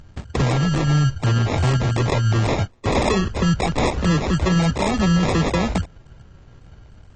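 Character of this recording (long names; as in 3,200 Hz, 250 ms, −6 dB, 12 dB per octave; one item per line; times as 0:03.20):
aliases and images of a low sample rate 1,500 Hz, jitter 0%
AAC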